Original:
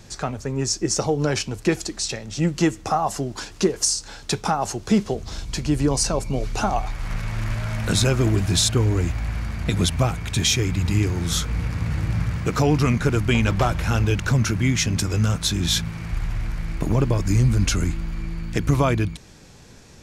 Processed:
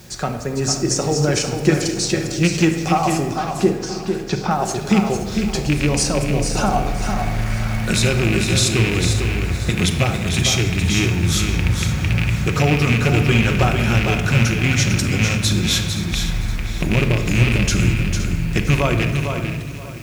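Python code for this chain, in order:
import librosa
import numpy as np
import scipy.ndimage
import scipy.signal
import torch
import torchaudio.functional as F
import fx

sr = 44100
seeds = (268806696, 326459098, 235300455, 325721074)

p1 = fx.rattle_buzz(x, sr, strikes_db=-17.0, level_db=-11.0)
p2 = scipy.signal.sosfilt(scipy.signal.butter(2, 43.0, 'highpass', fs=sr, output='sos'), p1)
p3 = fx.peak_eq(p2, sr, hz=1000.0, db=-3.5, octaves=0.39)
p4 = fx.rider(p3, sr, range_db=3, speed_s=0.5)
p5 = p3 + (p4 * librosa.db_to_amplitude(-1.0))
p6 = fx.quant_dither(p5, sr, seeds[0], bits=8, dither='triangular')
p7 = fx.air_absorb(p6, sr, metres=210.0, at=(3.31, 4.51))
p8 = p7 + fx.echo_single(p7, sr, ms=451, db=-6.5, dry=0)
p9 = fx.room_shoebox(p8, sr, seeds[1], volume_m3=1400.0, walls='mixed', distance_m=1.0)
p10 = fx.echo_crushed(p9, sr, ms=519, feedback_pct=55, bits=6, wet_db=-13.5)
y = p10 * librosa.db_to_amplitude(-4.0)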